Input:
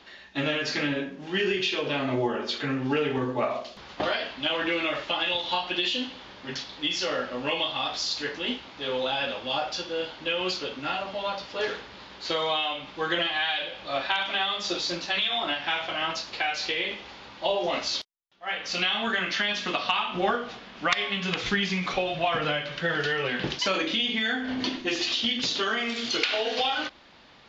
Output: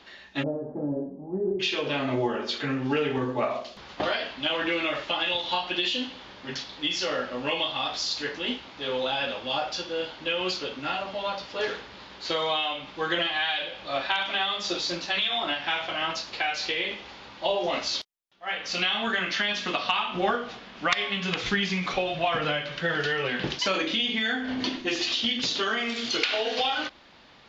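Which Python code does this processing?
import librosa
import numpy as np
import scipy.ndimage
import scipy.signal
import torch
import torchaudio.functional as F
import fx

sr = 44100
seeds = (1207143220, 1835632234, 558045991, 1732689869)

y = fx.steep_lowpass(x, sr, hz=820.0, slope=36, at=(0.42, 1.59), fade=0.02)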